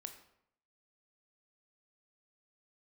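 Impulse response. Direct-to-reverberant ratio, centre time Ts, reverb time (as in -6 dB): 6.5 dB, 14 ms, 0.75 s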